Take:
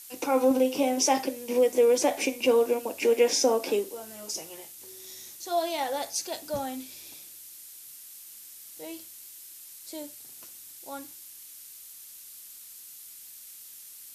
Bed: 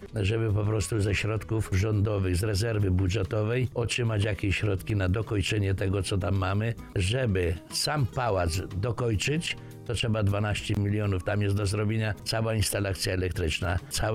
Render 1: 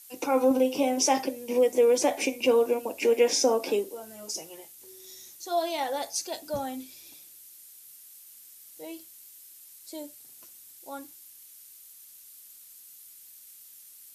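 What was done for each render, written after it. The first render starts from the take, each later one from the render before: denoiser 6 dB, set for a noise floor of -47 dBFS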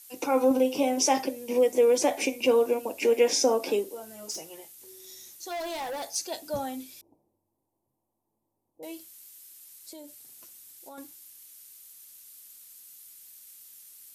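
4.31–6.15 hard clip -31.5 dBFS; 7.01–8.83 elliptic low-pass 940 Hz; 9.91–10.98 compressor, threshold -41 dBFS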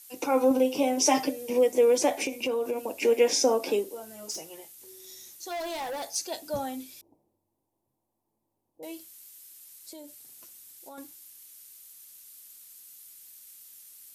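1.05–1.5 comb 6.7 ms, depth 87%; 2.22–2.94 compressor 4:1, threshold -26 dBFS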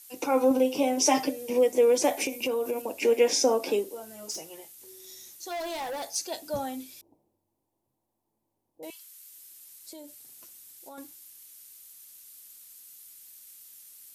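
2.04–2.82 high shelf 11000 Hz +10.5 dB; 8.9–9.31 steep high-pass 1000 Hz 48 dB/oct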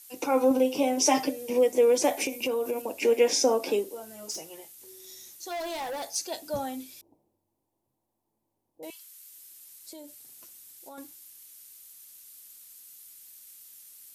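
nothing audible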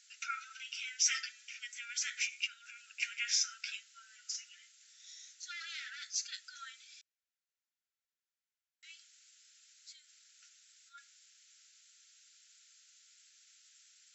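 FFT band-pass 1300–7700 Hz; tilt -1.5 dB/oct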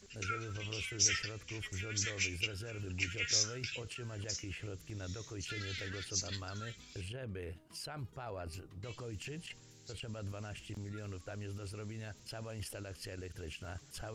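add bed -17.5 dB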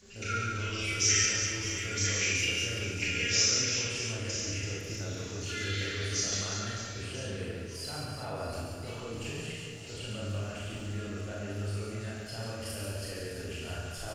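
reverse bouncing-ball echo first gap 0.14 s, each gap 1.4×, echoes 5; Schroeder reverb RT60 0.74 s, combs from 27 ms, DRR -4 dB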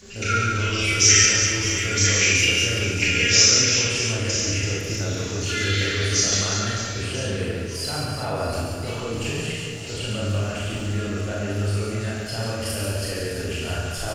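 gain +11 dB

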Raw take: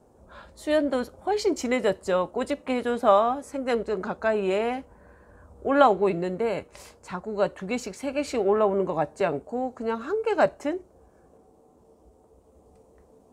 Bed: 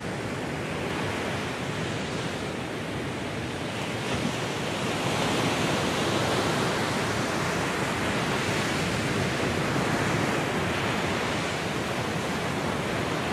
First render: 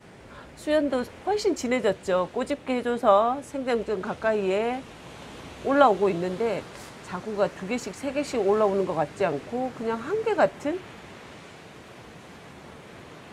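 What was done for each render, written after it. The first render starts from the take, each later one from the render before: add bed -17 dB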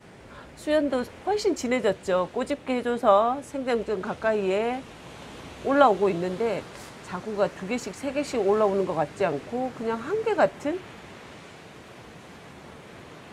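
nothing audible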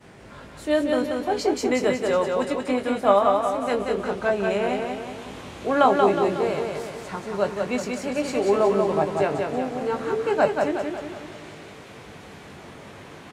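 doubler 20 ms -7 dB; feedback echo 0.183 s, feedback 51%, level -4 dB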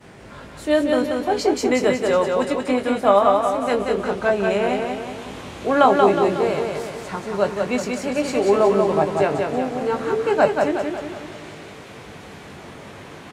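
gain +3.5 dB; limiter -3 dBFS, peak gain reduction 2 dB

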